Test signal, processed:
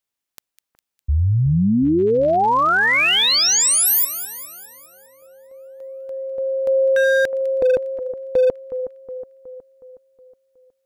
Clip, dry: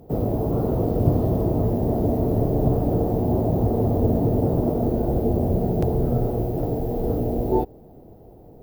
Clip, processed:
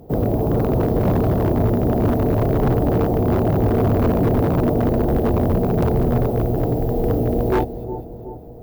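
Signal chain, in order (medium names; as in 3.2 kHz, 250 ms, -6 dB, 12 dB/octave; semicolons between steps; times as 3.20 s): two-band feedback delay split 1.7 kHz, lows 367 ms, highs 203 ms, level -12 dB; wavefolder -15 dBFS; trim +4 dB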